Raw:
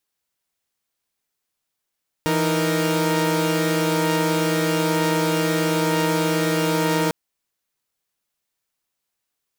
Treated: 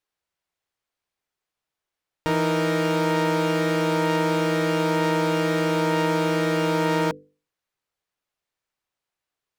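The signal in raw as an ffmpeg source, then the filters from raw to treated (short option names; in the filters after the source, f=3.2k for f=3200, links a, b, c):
-f lavfi -i "aevalsrc='0.0944*((2*mod(164.81*t,1)-1)+(2*mod(311.13*t,1)-1)+(2*mod(466.16*t,1)-1))':d=4.85:s=44100"
-af "lowpass=f=2.6k:p=1,equalizer=f=220:w=2.5:g=-5.5,bandreject=f=50:t=h:w=6,bandreject=f=100:t=h:w=6,bandreject=f=150:t=h:w=6,bandreject=f=200:t=h:w=6,bandreject=f=250:t=h:w=6,bandreject=f=300:t=h:w=6,bandreject=f=350:t=h:w=6,bandreject=f=400:t=h:w=6,bandreject=f=450:t=h:w=6,bandreject=f=500:t=h:w=6"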